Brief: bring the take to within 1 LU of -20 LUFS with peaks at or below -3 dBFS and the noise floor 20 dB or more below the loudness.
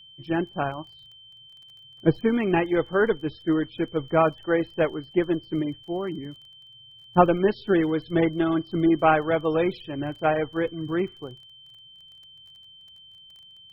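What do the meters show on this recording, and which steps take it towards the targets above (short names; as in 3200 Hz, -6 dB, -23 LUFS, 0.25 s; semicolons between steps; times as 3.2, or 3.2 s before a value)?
ticks 25/s; steady tone 3100 Hz; tone level -47 dBFS; loudness -24.5 LUFS; peak -4.5 dBFS; loudness target -20.0 LUFS
-> de-click; notch 3100 Hz, Q 30; gain +4.5 dB; limiter -3 dBFS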